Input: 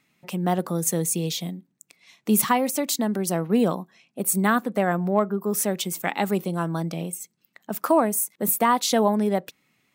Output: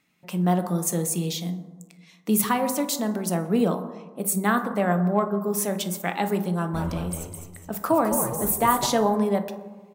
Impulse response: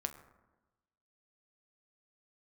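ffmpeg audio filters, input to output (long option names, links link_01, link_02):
-filter_complex "[0:a]asplit=3[link_01][link_02][link_03];[link_01]afade=type=out:start_time=6.73:duration=0.02[link_04];[link_02]asplit=6[link_05][link_06][link_07][link_08][link_09][link_10];[link_06]adelay=208,afreqshift=-85,volume=-6.5dB[link_11];[link_07]adelay=416,afreqshift=-170,volume=-13.8dB[link_12];[link_08]adelay=624,afreqshift=-255,volume=-21.2dB[link_13];[link_09]adelay=832,afreqshift=-340,volume=-28.5dB[link_14];[link_10]adelay=1040,afreqshift=-425,volume=-35.8dB[link_15];[link_05][link_11][link_12][link_13][link_14][link_15]amix=inputs=6:normalize=0,afade=type=in:start_time=6.73:duration=0.02,afade=type=out:start_time=8.85:duration=0.02[link_16];[link_03]afade=type=in:start_time=8.85:duration=0.02[link_17];[link_04][link_16][link_17]amix=inputs=3:normalize=0[link_18];[1:a]atrim=start_sample=2205,asetrate=36162,aresample=44100[link_19];[link_18][link_19]afir=irnorm=-1:irlink=0,volume=-2dB"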